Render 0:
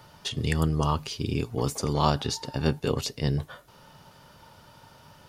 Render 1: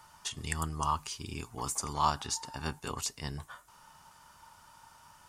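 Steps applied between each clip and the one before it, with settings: graphic EQ 125/250/500/1000/4000/8000 Hz -9/-4/-12/+8/-5/+11 dB; gain -5.5 dB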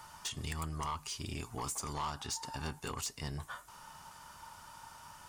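compressor 2:1, threshold -41 dBFS, peak gain reduction 11 dB; soft clip -36 dBFS, distortion -11 dB; gain +4.5 dB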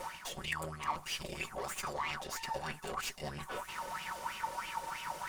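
minimum comb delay 5.3 ms; reverse; compressor, threshold -49 dBFS, peak gain reduction 13.5 dB; reverse; LFO bell 3.1 Hz 500–2800 Hz +17 dB; gain +7 dB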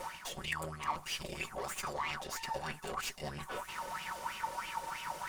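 nothing audible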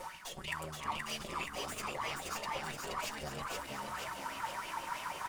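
frequency-shifting echo 0.475 s, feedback 58%, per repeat +63 Hz, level -3 dB; gain -2.5 dB

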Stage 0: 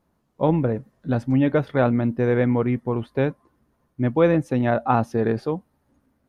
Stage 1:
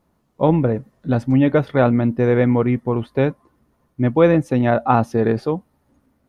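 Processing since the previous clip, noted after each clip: notch 1600 Hz, Q 22; gain +4 dB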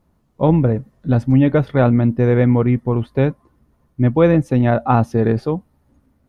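low shelf 140 Hz +10.5 dB; gain -1 dB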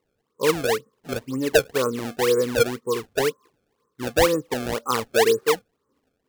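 double band-pass 710 Hz, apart 1.3 oct; decimation with a swept rate 26×, swing 160% 2 Hz; gain +3.5 dB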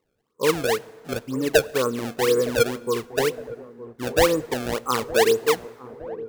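dark delay 0.913 s, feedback 61%, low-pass 810 Hz, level -15 dB; plate-style reverb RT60 2 s, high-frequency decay 0.6×, DRR 20 dB

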